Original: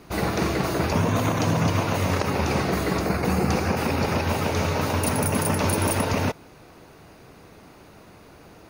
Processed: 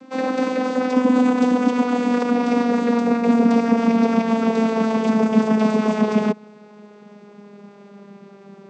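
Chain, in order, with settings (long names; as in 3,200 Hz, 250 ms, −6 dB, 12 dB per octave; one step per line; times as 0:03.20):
vocoder with a gliding carrier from C4, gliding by −5 semitones
level +7 dB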